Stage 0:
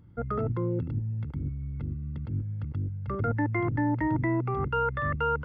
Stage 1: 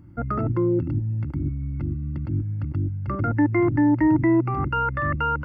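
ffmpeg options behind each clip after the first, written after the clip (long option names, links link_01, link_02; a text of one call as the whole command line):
ffmpeg -i in.wav -filter_complex "[0:a]superequalizer=6b=2.24:7b=0.398:13b=0.316,asplit=2[link_01][link_02];[link_02]alimiter=limit=-22.5dB:level=0:latency=1:release=140,volume=0dB[link_03];[link_01][link_03]amix=inputs=2:normalize=0" out.wav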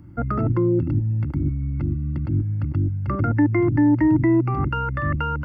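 ffmpeg -i in.wav -filter_complex "[0:a]acrossover=split=340|3000[link_01][link_02][link_03];[link_02]acompressor=threshold=-29dB:ratio=6[link_04];[link_01][link_04][link_03]amix=inputs=3:normalize=0,volume=3.5dB" out.wav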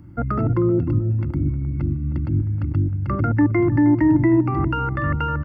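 ffmpeg -i in.wav -filter_complex "[0:a]asplit=2[link_01][link_02];[link_02]adelay=312,lowpass=frequency=1200:poles=1,volume=-12dB,asplit=2[link_03][link_04];[link_04]adelay=312,lowpass=frequency=1200:poles=1,volume=0.4,asplit=2[link_05][link_06];[link_06]adelay=312,lowpass=frequency=1200:poles=1,volume=0.4,asplit=2[link_07][link_08];[link_08]adelay=312,lowpass=frequency=1200:poles=1,volume=0.4[link_09];[link_01][link_03][link_05][link_07][link_09]amix=inputs=5:normalize=0,volume=1dB" out.wav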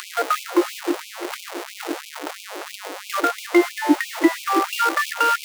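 ffmpeg -i in.wav -af "aeval=exprs='val(0)+0.5*0.075*sgn(val(0))':channel_layout=same,afftfilt=real='re*gte(b*sr/1024,290*pow(2300/290,0.5+0.5*sin(2*PI*3*pts/sr)))':imag='im*gte(b*sr/1024,290*pow(2300/290,0.5+0.5*sin(2*PI*3*pts/sr)))':win_size=1024:overlap=0.75,volume=5dB" out.wav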